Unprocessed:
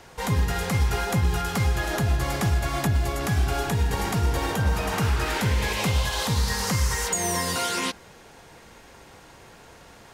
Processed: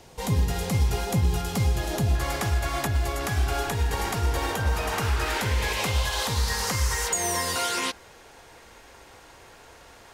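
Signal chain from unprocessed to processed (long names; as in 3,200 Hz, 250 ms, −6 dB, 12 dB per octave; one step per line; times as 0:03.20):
parametric band 1,500 Hz −9 dB 1.2 octaves, from 0:02.15 170 Hz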